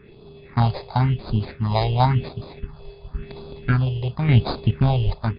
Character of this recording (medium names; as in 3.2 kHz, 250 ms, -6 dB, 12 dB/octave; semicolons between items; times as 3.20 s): aliases and images of a low sample rate 3 kHz, jitter 0%; phasing stages 4, 0.94 Hz, lowest notch 230–1900 Hz; random-step tremolo 3.5 Hz; MP3